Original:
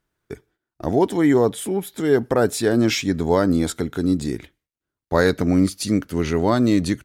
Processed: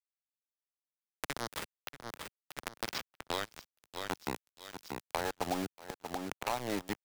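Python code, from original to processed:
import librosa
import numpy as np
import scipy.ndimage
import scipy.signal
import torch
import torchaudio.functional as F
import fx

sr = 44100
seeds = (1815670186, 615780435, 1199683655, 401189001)

p1 = fx.filter_sweep_bandpass(x, sr, from_hz=4700.0, to_hz=830.0, start_s=3.21, end_s=4.14, q=6.3)
p2 = fx.auto_swell(p1, sr, attack_ms=355.0)
p3 = np.where(np.abs(p2) >= 10.0 ** (-41.0 / 20.0), p2, 0.0)
p4 = p3 + fx.echo_feedback(p3, sr, ms=634, feedback_pct=43, wet_db=-19, dry=0)
p5 = fx.band_squash(p4, sr, depth_pct=100)
y = F.gain(torch.from_numpy(p5), 11.5).numpy()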